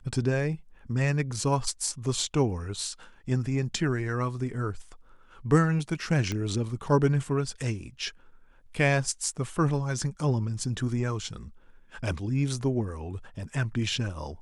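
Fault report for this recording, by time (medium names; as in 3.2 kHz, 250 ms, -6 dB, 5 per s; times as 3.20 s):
6.32 s: pop -17 dBFS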